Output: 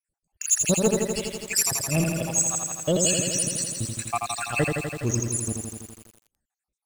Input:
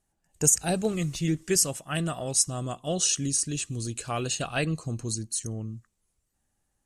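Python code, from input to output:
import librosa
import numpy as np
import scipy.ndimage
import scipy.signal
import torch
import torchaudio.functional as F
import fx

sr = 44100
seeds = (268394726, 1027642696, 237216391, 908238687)

y = fx.spec_dropout(x, sr, seeds[0], share_pct=71)
y = fx.leveller(y, sr, passes=2)
y = fx.echo_crushed(y, sr, ms=83, feedback_pct=80, bits=8, wet_db=-4)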